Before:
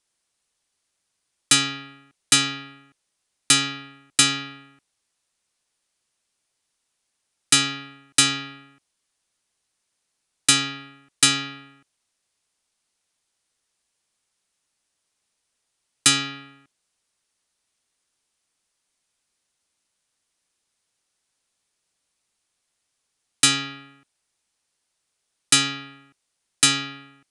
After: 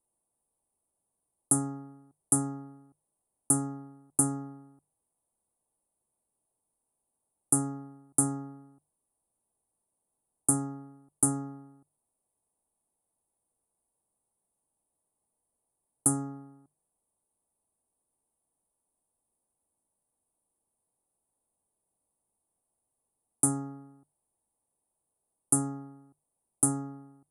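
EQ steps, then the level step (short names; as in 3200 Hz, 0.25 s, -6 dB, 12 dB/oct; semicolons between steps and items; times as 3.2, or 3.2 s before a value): elliptic band-stop 900–9700 Hz, stop band 60 dB; notches 50/100/150 Hz; 0.0 dB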